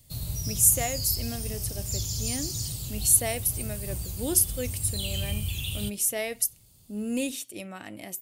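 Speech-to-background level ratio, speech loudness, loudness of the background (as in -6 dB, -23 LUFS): 6.0 dB, -26.0 LUFS, -32.0 LUFS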